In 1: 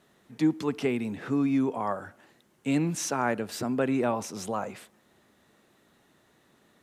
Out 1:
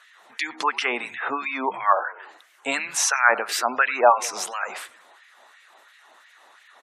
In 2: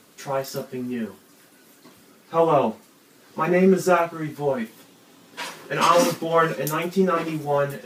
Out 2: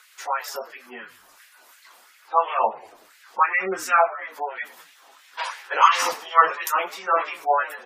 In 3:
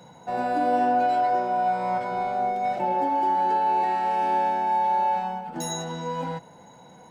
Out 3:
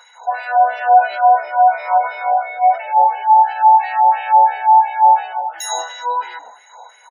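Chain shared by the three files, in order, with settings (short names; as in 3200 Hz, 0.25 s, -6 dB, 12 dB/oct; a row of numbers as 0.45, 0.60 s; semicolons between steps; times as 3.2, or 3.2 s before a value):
LFO high-pass sine 2.9 Hz 730–2100 Hz; frequency-shifting echo 95 ms, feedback 50%, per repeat -65 Hz, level -20 dB; spectral gate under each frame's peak -25 dB strong; normalise peaks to -2 dBFS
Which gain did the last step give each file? +11.0, +0.5, +7.5 dB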